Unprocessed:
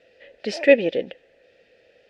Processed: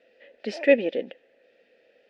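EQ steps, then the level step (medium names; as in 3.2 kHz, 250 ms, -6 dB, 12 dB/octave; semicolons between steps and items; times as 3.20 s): tone controls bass -15 dB, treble -6 dB; peaking EQ 230 Hz +11.5 dB 0.82 oct; -4.0 dB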